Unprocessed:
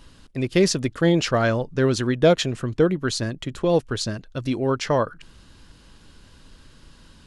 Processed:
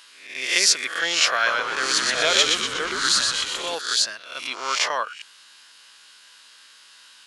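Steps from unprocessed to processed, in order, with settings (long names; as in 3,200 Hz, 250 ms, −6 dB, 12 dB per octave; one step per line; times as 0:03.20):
peak hold with a rise ahead of every peak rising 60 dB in 0.61 s
high-pass filter 1,500 Hz 12 dB per octave
0:01.34–0:03.75: echo with shifted repeats 121 ms, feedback 54%, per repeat −86 Hz, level −3.5 dB
level +6 dB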